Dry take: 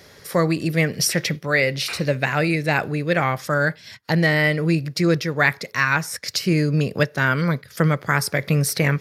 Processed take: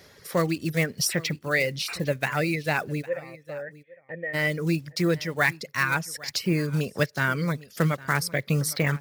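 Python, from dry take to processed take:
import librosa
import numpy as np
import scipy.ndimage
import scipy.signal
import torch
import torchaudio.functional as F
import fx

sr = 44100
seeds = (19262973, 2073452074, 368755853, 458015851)

y = fx.block_float(x, sr, bits=5)
y = fx.dereverb_blind(y, sr, rt60_s=0.66)
y = fx.formant_cascade(y, sr, vowel='e', at=(3.01, 4.33), fade=0.02)
y = y + 10.0 ** (-20.0 / 20.0) * np.pad(y, (int(807 * sr / 1000.0), 0))[:len(y)]
y = F.gain(torch.from_numpy(y), -4.5).numpy()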